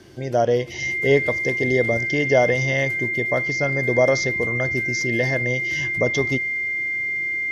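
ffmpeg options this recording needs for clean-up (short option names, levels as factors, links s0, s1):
-af "bandreject=f=2100:w=30"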